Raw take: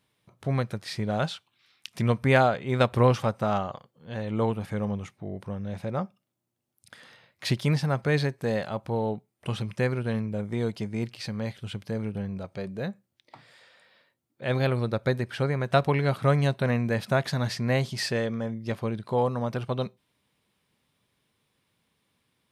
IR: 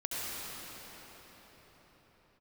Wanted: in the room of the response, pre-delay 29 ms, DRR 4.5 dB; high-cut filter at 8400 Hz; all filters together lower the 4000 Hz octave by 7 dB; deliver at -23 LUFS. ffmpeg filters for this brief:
-filter_complex "[0:a]lowpass=8.4k,equalizer=f=4k:t=o:g=-8.5,asplit=2[a][b];[1:a]atrim=start_sample=2205,adelay=29[c];[b][c]afir=irnorm=-1:irlink=0,volume=-10.5dB[d];[a][d]amix=inputs=2:normalize=0,volume=4dB"

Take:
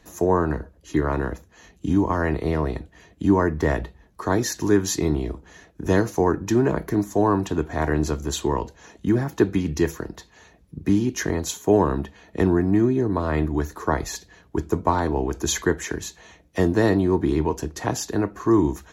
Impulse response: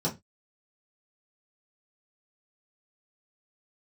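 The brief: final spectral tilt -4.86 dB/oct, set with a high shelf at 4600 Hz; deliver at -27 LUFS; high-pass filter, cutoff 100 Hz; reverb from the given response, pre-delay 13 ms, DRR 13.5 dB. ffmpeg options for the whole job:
-filter_complex "[0:a]highpass=100,highshelf=f=4.6k:g=9,asplit=2[a][b];[1:a]atrim=start_sample=2205,adelay=13[c];[b][c]afir=irnorm=-1:irlink=0,volume=-21dB[d];[a][d]amix=inputs=2:normalize=0,volume=-4.5dB"

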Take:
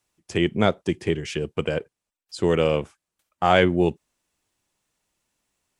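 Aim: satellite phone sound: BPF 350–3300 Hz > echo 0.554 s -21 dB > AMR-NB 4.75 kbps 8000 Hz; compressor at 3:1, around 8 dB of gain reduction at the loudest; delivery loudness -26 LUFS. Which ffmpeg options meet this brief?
-af "acompressor=threshold=-23dB:ratio=3,highpass=350,lowpass=3.3k,aecho=1:1:554:0.0891,volume=7dB" -ar 8000 -c:a libopencore_amrnb -b:a 4750

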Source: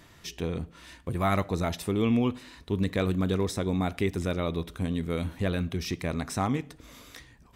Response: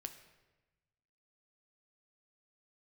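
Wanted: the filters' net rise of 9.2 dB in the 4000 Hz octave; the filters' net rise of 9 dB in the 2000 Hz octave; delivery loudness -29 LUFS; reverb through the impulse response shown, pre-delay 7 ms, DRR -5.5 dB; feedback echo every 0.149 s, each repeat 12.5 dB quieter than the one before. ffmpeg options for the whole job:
-filter_complex "[0:a]equalizer=f=2k:t=o:g=8.5,equalizer=f=4k:t=o:g=8.5,aecho=1:1:149|298|447:0.237|0.0569|0.0137,asplit=2[a][b];[1:a]atrim=start_sample=2205,adelay=7[c];[b][c]afir=irnorm=-1:irlink=0,volume=9.5dB[d];[a][d]amix=inputs=2:normalize=0,volume=-8dB"

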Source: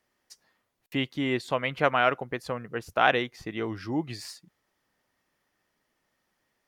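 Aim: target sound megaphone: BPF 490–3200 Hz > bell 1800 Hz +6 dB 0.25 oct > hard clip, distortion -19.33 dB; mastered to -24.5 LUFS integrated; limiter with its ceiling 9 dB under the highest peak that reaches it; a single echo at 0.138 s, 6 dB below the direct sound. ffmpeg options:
-af "alimiter=limit=-14.5dB:level=0:latency=1,highpass=490,lowpass=3.2k,equalizer=f=1.8k:t=o:w=0.25:g=6,aecho=1:1:138:0.501,asoftclip=type=hard:threshold=-18.5dB,volume=7.5dB"

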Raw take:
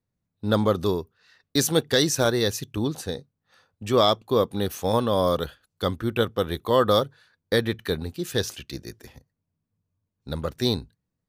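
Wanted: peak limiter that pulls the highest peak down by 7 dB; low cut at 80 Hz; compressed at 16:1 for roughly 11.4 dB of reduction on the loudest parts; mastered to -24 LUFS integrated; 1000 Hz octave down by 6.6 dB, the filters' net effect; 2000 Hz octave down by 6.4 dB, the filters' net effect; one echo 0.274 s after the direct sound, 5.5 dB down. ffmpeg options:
-af "highpass=80,equalizer=f=1k:t=o:g=-7,equalizer=f=2k:t=o:g=-5.5,acompressor=threshold=-28dB:ratio=16,alimiter=limit=-23dB:level=0:latency=1,aecho=1:1:274:0.531,volume=12dB"

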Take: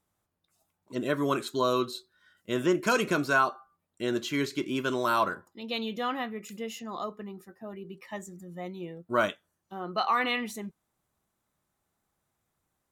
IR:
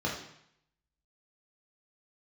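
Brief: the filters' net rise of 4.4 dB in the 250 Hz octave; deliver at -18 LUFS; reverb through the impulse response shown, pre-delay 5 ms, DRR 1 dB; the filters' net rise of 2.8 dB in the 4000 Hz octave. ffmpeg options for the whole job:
-filter_complex "[0:a]equalizer=f=250:t=o:g=5.5,equalizer=f=4k:t=o:g=3.5,asplit=2[a][b];[1:a]atrim=start_sample=2205,adelay=5[c];[b][c]afir=irnorm=-1:irlink=0,volume=-8.5dB[d];[a][d]amix=inputs=2:normalize=0,volume=6.5dB"

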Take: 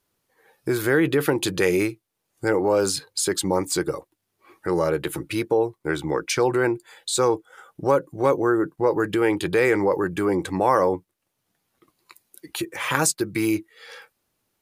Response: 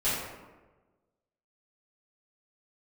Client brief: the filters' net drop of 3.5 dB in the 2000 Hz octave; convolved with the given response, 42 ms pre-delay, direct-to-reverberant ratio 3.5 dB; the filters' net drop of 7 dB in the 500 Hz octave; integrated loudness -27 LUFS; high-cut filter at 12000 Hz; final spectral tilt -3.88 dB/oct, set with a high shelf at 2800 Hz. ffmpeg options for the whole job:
-filter_complex "[0:a]lowpass=12k,equalizer=f=500:t=o:g=-9,equalizer=f=2k:t=o:g=-7.5,highshelf=f=2.8k:g=9,asplit=2[a][b];[1:a]atrim=start_sample=2205,adelay=42[c];[b][c]afir=irnorm=-1:irlink=0,volume=-14dB[d];[a][d]amix=inputs=2:normalize=0,volume=-4dB"

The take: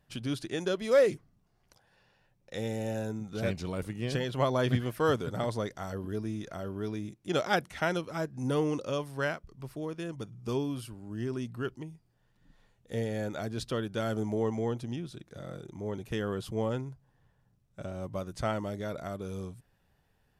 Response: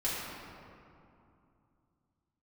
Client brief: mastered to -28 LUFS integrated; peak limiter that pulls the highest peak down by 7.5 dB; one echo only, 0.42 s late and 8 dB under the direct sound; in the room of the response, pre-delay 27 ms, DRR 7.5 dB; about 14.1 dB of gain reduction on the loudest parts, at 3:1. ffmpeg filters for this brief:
-filter_complex "[0:a]acompressor=threshold=-38dB:ratio=3,alimiter=level_in=7.5dB:limit=-24dB:level=0:latency=1,volume=-7.5dB,aecho=1:1:420:0.398,asplit=2[a][b];[1:a]atrim=start_sample=2205,adelay=27[c];[b][c]afir=irnorm=-1:irlink=0,volume=-14.5dB[d];[a][d]amix=inputs=2:normalize=0,volume=13dB"

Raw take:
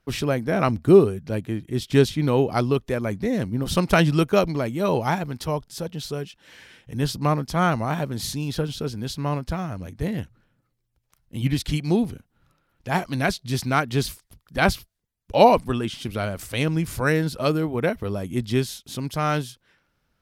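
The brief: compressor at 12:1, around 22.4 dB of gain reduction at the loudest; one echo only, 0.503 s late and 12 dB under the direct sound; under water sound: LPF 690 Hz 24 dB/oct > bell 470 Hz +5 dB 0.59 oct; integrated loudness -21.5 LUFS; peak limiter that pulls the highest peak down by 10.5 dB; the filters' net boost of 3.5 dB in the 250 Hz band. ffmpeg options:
-af "equalizer=f=250:t=o:g=4,acompressor=threshold=-30dB:ratio=12,alimiter=level_in=4dB:limit=-24dB:level=0:latency=1,volume=-4dB,lowpass=f=690:w=0.5412,lowpass=f=690:w=1.3066,equalizer=f=470:t=o:w=0.59:g=5,aecho=1:1:503:0.251,volume=16.5dB"

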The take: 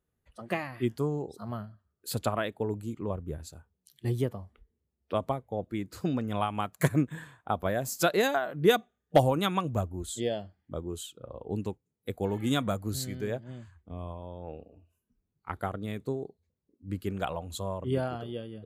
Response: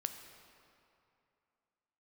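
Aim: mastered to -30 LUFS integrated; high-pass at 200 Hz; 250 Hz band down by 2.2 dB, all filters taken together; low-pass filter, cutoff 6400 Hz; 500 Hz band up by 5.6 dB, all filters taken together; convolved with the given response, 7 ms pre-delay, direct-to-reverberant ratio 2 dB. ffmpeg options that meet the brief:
-filter_complex "[0:a]highpass=200,lowpass=6.4k,equalizer=f=250:t=o:g=-4,equalizer=f=500:t=o:g=8,asplit=2[a][b];[1:a]atrim=start_sample=2205,adelay=7[c];[b][c]afir=irnorm=-1:irlink=0,volume=-1.5dB[d];[a][d]amix=inputs=2:normalize=0,volume=-3.5dB"

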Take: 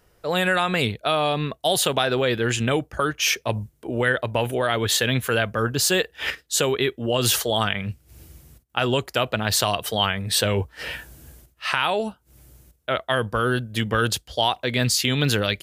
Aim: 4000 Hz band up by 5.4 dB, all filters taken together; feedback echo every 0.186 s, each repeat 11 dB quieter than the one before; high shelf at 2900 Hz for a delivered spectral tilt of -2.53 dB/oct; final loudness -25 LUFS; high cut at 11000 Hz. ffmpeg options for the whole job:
-af "lowpass=11k,highshelf=f=2.9k:g=4.5,equalizer=f=4k:t=o:g=3.5,aecho=1:1:186|372|558:0.282|0.0789|0.0221,volume=-5.5dB"

